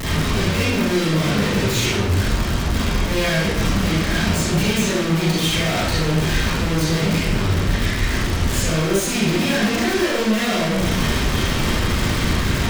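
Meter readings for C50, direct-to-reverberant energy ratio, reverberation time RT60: -3.5 dB, -9.0 dB, 1.0 s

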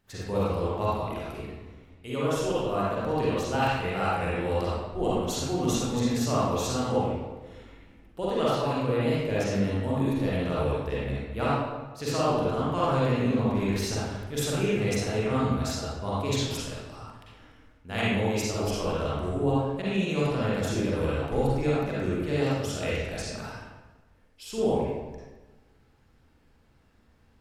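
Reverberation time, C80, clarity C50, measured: 1.2 s, -0.5 dB, -5.0 dB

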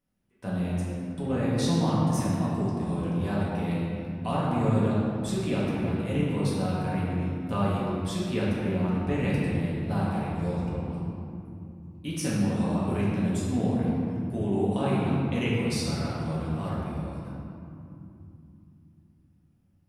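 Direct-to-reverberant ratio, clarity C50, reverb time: -8.0 dB, -2.5 dB, 2.9 s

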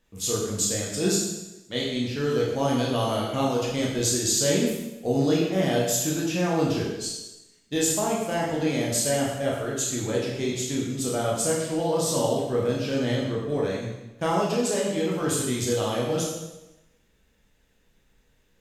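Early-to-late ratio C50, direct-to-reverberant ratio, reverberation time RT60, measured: 1.5 dB, -4.5 dB, 1.0 s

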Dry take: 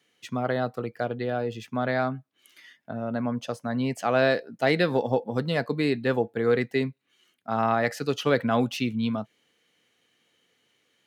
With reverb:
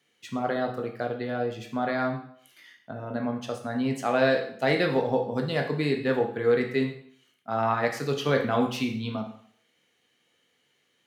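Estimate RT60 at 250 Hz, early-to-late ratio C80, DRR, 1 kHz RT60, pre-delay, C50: 0.55 s, 11.5 dB, 2.5 dB, 0.60 s, 12 ms, 7.5 dB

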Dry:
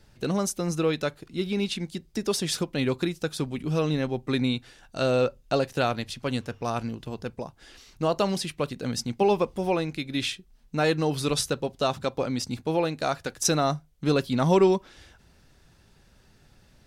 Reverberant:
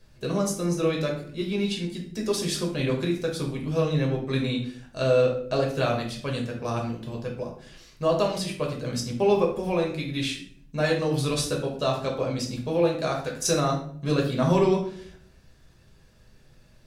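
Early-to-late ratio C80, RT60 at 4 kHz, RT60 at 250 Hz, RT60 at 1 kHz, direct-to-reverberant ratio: 11.0 dB, 0.40 s, 0.75 s, 0.50 s, -1.0 dB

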